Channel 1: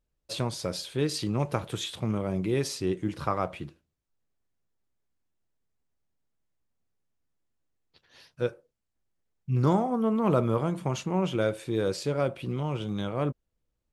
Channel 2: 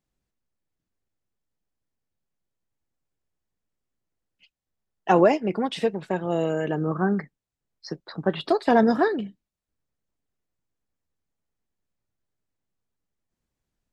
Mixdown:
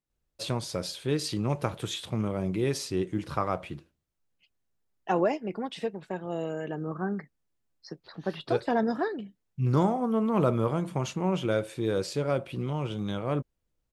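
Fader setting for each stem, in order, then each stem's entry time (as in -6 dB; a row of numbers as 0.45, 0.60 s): -0.5, -8.0 dB; 0.10, 0.00 s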